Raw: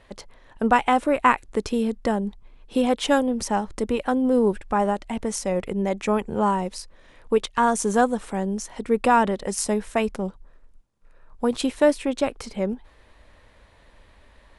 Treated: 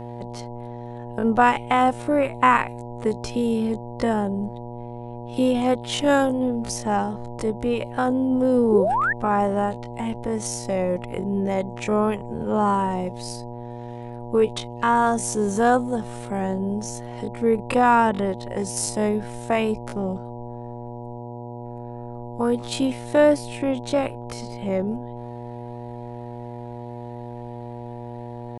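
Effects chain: buzz 120 Hz, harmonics 8, -35 dBFS -3 dB/oct; tempo 0.51×; painted sound rise, 8.72–9.13, 350–1900 Hz -21 dBFS

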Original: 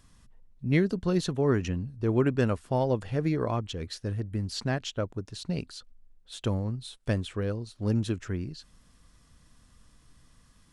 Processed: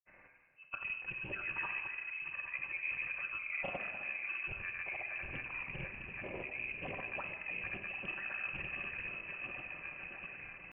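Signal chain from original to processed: regenerating reverse delay 0.352 s, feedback 77%, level -11 dB; Bessel high-pass 510 Hz, order 6; auto swell 0.112 s; reverse; compressor 5:1, threshold -50 dBFS, peak gain reduction 21.5 dB; reverse; vibrato 7.1 Hz 27 cents; pitch shift -7.5 st; grains, grains 20/s, pitch spread up and down by 0 st; shoebox room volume 3100 m³, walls mixed, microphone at 1.3 m; inverted band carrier 2800 Hz; Doppler distortion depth 0.19 ms; gain +10.5 dB

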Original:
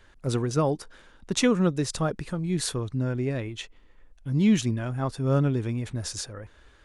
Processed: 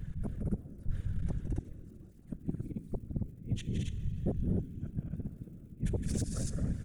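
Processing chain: flipped gate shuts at -22 dBFS, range -42 dB; crackle 46/s -54 dBFS; passive tone stack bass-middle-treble 10-0-1; in parallel at +1 dB: limiter -46.5 dBFS, peak gain reduction 10 dB; on the sum: bell 4500 Hz -13 dB 1.6 oct; loudspeakers at several distances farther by 57 m -8 dB, 75 m -4 dB, 95 m -3 dB; on a send at -13 dB: reverb RT60 2.9 s, pre-delay 17 ms; on the sum: sine folder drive 8 dB, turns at -32.5 dBFS; whisperiser; gain +5.5 dB

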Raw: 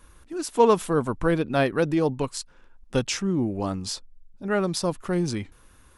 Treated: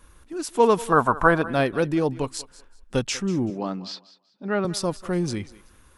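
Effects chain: 0.92–1.42 band shelf 1000 Hz +13 dB; 3.5–4.65 Chebyshev band-pass 180–4500 Hz, order 3; thinning echo 0.191 s, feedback 25%, high-pass 340 Hz, level -17.5 dB

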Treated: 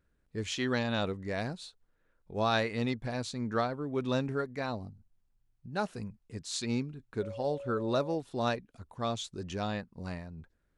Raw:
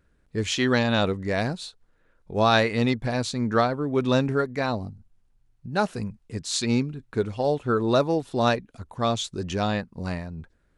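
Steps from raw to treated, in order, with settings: 7.21–8.14 whine 560 Hz -31 dBFS; gain -9 dB

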